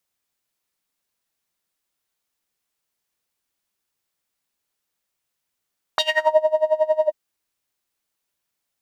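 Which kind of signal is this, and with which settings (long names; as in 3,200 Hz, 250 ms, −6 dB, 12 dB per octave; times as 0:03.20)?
subtractive patch with tremolo D#5, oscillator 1 triangle, oscillator 2 saw, interval +7 semitones, oscillator 2 level −9.5 dB, sub −28 dB, noise −21 dB, filter bandpass, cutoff 360 Hz, Q 4.5, filter envelope 3.5 octaves, filter decay 0.36 s, filter sustain 30%, attack 1.5 ms, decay 0.46 s, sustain −12.5 dB, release 0.05 s, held 1.09 s, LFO 11 Hz, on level 22 dB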